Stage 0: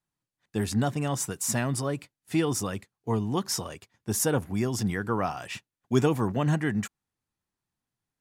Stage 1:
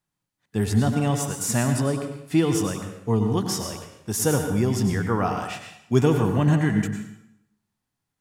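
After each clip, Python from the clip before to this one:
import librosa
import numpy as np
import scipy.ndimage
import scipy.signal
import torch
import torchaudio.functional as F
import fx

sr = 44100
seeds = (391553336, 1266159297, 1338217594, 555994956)

y = fx.hpss(x, sr, part='harmonic', gain_db=6)
y = fx.rev_plate(y, sr, seeds[0], rt60_s=0.79, hf_ratio=0.85, predelay_ms=85, drr_db=5.0)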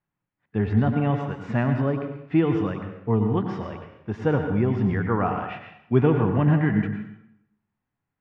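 y = scipy.signal.sosfilt(scipy.signal.butter(4, 2500.0, 'lowpass', fs=sr, output='sos'), x)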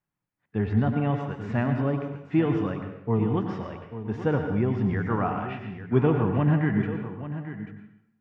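y = x + 10.0 ** (-12.0 / 20.0) * np.pad(x, (int(839 * sr / 1000.0), 0))[:len(x)]
y = y * librosa.db_to_amplitude(-2.5)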